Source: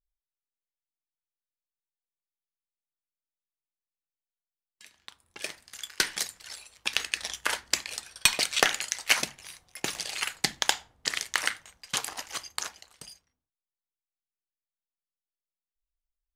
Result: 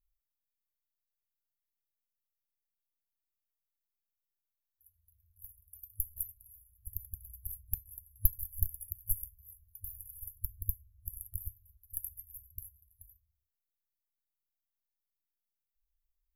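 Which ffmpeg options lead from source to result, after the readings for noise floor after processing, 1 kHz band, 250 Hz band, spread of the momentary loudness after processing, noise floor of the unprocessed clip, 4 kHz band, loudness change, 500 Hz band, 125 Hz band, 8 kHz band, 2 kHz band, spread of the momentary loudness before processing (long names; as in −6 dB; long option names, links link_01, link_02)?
below −85 dBFS, below −40 dB, below −30 dB, 18 LU, below −85 dBFS, below −40 dB, −10.5 dB, below −40 dB, +6.5 dB, −14.5 dB, below −40 dB, 18 LU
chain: -af "aeval=exprs='0.447*(cos(1*acos(clip(val(0)/0.447,-1,1)))-cos(1*PI/2))+0.0891*(cos(2*acos(clip(val(0)/0.447,-1,1)))-cos(2*PI/2))+0.0355*(cos(3*acos(clip(val(0)/0.447,-1,1)))-cos(3*PI/2))':channel_layout=same,afftfilt=real='re*(1-between(b*sr/4096,100,11000))':imag='im*(1-between(b*sr/4096,100,11000))':win_size=4096:overlap=0.75,volume=8dB"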